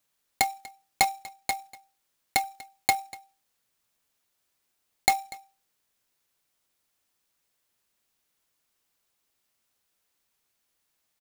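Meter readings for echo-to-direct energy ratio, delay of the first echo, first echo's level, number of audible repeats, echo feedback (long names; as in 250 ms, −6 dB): −20.5 dB, 242 ms, −20.5 dB, 1, repeats not evenly spaced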